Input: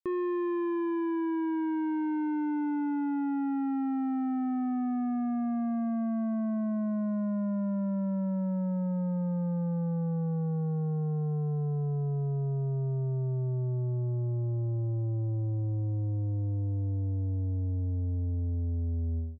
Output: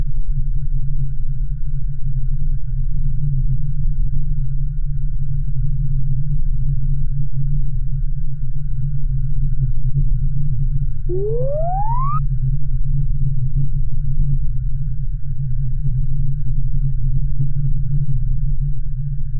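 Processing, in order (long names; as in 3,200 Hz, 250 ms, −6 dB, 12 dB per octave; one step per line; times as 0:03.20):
mains-hum notches 50/100/150/200/250/300 Hz
on a send: feedback delay with all-pass diffusion 684 ms, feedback 46%, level −10 dB
on the sum: linear-prediction vocoder at 8 kHz pitch kept
speech leveller 0.5 s
extreme stretch with random phases 30×, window 0.05 s, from 0:10.52
brick-wall band-stop 150–1,400 Hz
spectral tilt −2.5 dB per octave
sound drawn into the spectrogram rise, 0:11.09–0:12.19, 340–1,300 Hz −29 dBFS
in parallel at +2.5 dB: brickwall limiter −18 dBFS, peak gain reduction 11 dB
on the sum: parametric band 140 Hz +5.5 dB 1.1 octaves
soft clipping −5 dBFS, distortion −24 dB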